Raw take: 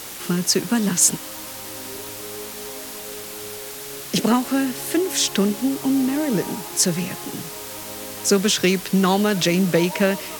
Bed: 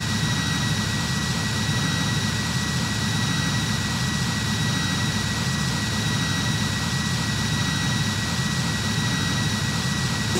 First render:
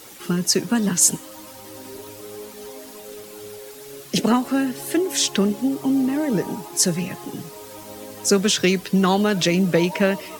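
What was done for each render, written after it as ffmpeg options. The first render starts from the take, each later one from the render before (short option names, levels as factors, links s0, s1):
-af "afftdn=nr=10:nf=-35"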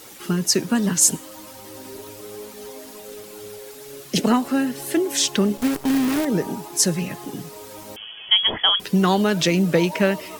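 -filter_complex "[0:a]asettb=1/sr,asplit=3[s0][s1][s2];[s0]atrim=end=5.574[s3];[s1]atrim=start=5.57:end=6.25,asetpts=PTS-STARTPTS,afade=t=in:d=0.004:c=qsin,afade=t=out:st=0.676:d=0.004:c=qsin,acrusher=bits=5:dc=4:mix=0:aa=0.000001[s4];[s2]atrim=start=6.246[s5];[s3][s4]acrossfade=d=0.004:c1=hsin:c2=qsin[s6];[s6][s5]acrossfade=d=0.004:c1=qsin:c2=hsin,asettb=1/sr,asplit=3[s7][s8][s9];[s7]atrim=end=7.964[s10];[s8]atrim=start=7.96:end=8.8,asetpts=PTS-STARTPTS,afade=t=in:d=0.004:c=qsin,afade=t=out:st=0.836:d=0.004:c=qsin,lowpass=f=3000:t=q:w=0.5098,lowpass=f=3000:t=q:w=0.6013,lowpass=f=3000:t=q:w=0.9,lowpass=f=3000:t=q:w=2.563,afreqshift=-3500[s11];[s9]atrim=start=8.796[s12];[s10][s11]acrossfade=d=0.004:c1=hsin:c2=qsin[s13];[s13][s12]acrossfade=d=0.004:c1=qsin:c2=hsin"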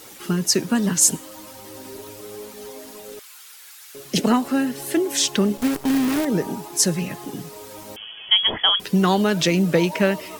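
-filter_complex "[0:a]asettb=1/sr,asplit=3[s0][s1][s2];[s0]atrim=end=3.194[s3];[s1]atrim=start=3.19:end=3.95,asetpts=PTS-STARTPTS,afade=t=in:d=0.004:c=qsin,afade=t=out:st=0.756:d=0.004:c=qsin,highpass=f=1200:w=0.5412,highpass=f=1200:w=1.3066[s4];[s2]atrim=start=3.946[s5];[s3][s4]acrossfade=d=0.004:c1=hsin:c2=qsin[s6];[s6][s5]acrossfade=d=0.004:c1=qsin:c2=hsin"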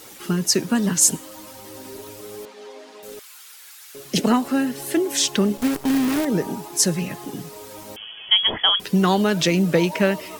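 -filter_complex "[0:a]asettb=1/sr,asplit=3[s0][s1][s2];[s0]atrim=end=2.454[s3];[s1]atrim=start=2.45:end=3.03,asetpts=PTS-STARTPTS,afade=t=in:d=0.004:c=qsin,afade=t=out:st=0.576:d=0.004:c=qsin,highpass=360,lowpass=4200[s4];[s2]atrim=start=3.026[s5];[s3][s4]acrossfade=d=0.004:c1=hsin:c2=qsin[s6];[s6][s5]acrossfade=d=0.004:c1=qsin:c2=hsin"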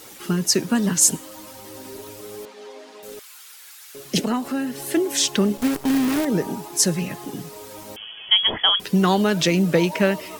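-filter_complex "[0:a]asettb=1/sr,asplit=3[s0][s1][s2];[s0]atrim=end=4.214[s3];[s1]atrim=start=4.21:end=4.86,asetpts=PTS-STARTPTS,afade=t=in:d=0.004:c=qsin,afade=t=out:st=0.646:d=0.004:c=qsin,acompressor=threshold=0.0398:ratio=1.5:attack=3.2:release=140:knee=1:detection=peak[s4];[s2]atrim=start=4.856[s5];[s3][s4]acrossfade=d=0.004:c1=hsin:c2=qsin[s6];[s6][s5]acrossfade=d=0.004:c1=qsin:c2=hsin"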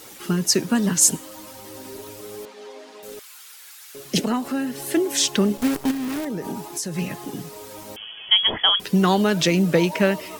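-filter_complex "[0:a]asplit=3[s0][s1][s2];[s0]afade=t=out:st=5.9:d=0.02[s3];[s1]acompressor=threshold=0.0631:ratio=10:attack=3.2:release=140:knee=1:detection=peak,afade=t=in:st=5.9:d=0.02,afade=t=out:st=6.97:d=0.02[s4];[s2]afade=t=in:st=6.97:d=0.02[s5];[s3][s4][s5]amix=inputs=3:normalize=0"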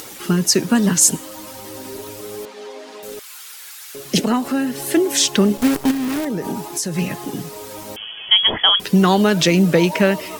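-filter_complex "[0:a]asplit=2[s0][s1];[s1]alimiter=limit=0.266:level=0:latency=1:release=152,volume=0.794[s2];[s0][s2]amix=inputs=2:normalize=0,acompressor=mode=upward:threshold=0.0251:ratio=2.5"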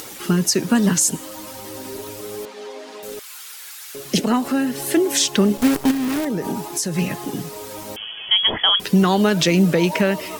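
-af "alimiter=limit=0.447:level=0:latency=1:release=178"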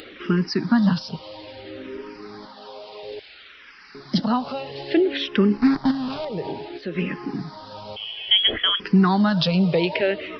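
-filter_complex "[0:a]aresample=11025,acrusher=bits=7:mix=0:aa=0.000001,aresample=44100,asplit=2[s0][s1];[s1]afreqshift=-0.59[s2];[s0][s2]amix=inputs=2:normalize=1"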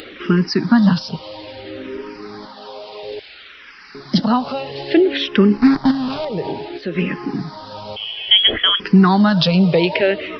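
-af "volume=1.88"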